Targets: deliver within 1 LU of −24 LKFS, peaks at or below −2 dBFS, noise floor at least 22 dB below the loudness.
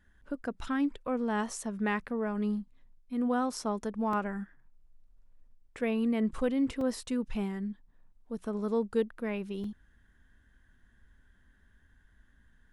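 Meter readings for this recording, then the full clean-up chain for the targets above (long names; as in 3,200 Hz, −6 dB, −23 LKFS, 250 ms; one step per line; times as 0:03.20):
number of dropouts 3; longest dropout 2.9 ms; integrated loudness −33.0 LKFS; sample peak −17.5 dBFS; target loudness −24.0 LKFS
→ repair the gap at 0:04.13/0:06.81/0:09.64, 2.9 ms
level +9 dB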